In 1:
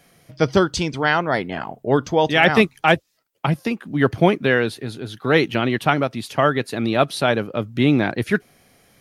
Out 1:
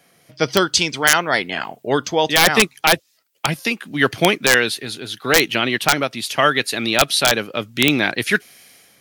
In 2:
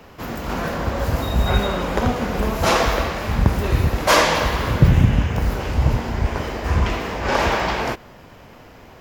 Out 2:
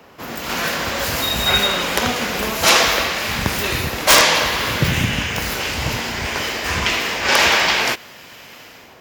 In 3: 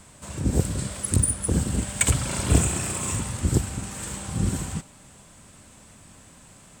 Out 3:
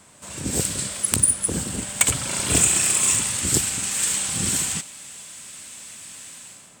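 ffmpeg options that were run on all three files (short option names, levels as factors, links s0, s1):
-filter_complex "[0:a]highpass=f=220:p=1,acrossover=split=1900[s0][s1];[s1]dynaudnorm=f=120:g=7:m=5.01[s2];[s0][s2]amix=inputs=2:normalize=0,aeval=exprs='(mod(1.19*val(0)+1,2)-1)/1.19':c=same"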